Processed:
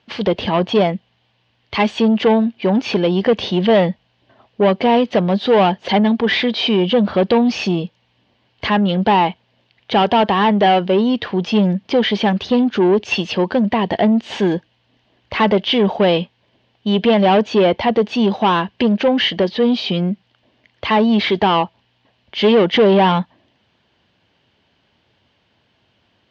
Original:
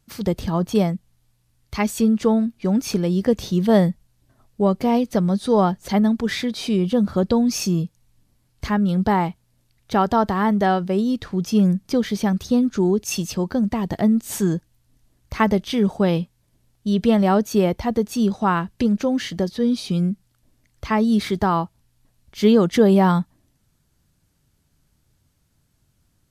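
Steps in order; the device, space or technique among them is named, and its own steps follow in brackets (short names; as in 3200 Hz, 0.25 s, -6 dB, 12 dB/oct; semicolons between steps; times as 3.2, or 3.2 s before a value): overdrive pedal into a guitar cabinet (overdrive pedal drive 24 dB, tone 1500 Hz, clips at -3 dBFS; speaker cabinet 80–4500 Hz, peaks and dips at 150 Hz -9 dB, 290 Hz -4 dB, 1300 Hz -8 dB, 3000 Hz +9 dB)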